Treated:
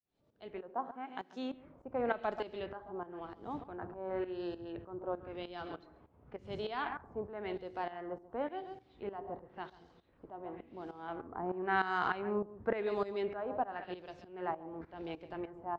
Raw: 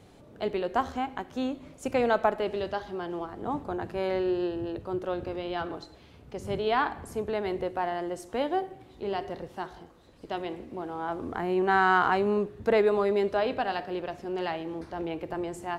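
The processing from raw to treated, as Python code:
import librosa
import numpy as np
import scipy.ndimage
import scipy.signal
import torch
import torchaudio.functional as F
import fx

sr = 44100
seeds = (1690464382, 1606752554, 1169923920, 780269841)

y = fx.fade_in_head(x, sr, length_s=1.09)
y = fx.ellip_highpass(y, sr, hz=170.0, order=4, stop_db=40, at=(0.7, 1.54))
y = y + 10.0 ** (-12.0 / 20.0) * np.pad(y, (int(136 * sr / 1000.0), 0))[:len(y)]
y = fx.tremolo_shape(y, sr, shape='saw_up', hz=3.3, depth_pct=80)
y = fx.filter_lfo_lowpass(y, sr, shape='sine', hz=0.94, low_hz=940.0, high_hz=5500.0, q=1.6)
y = fx.band_widen(y, sr, depth_pct=70, at=(13.84, 14.51))
y = y * 10.0 ** (-7.0 / 20.0)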